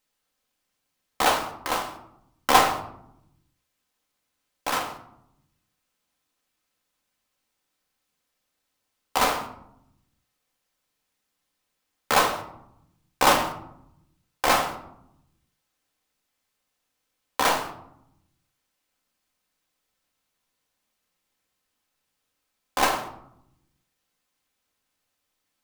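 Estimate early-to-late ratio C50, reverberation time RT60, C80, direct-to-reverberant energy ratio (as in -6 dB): 9.5 dB, 0.75 s, 12.0 dB, 2.5 dB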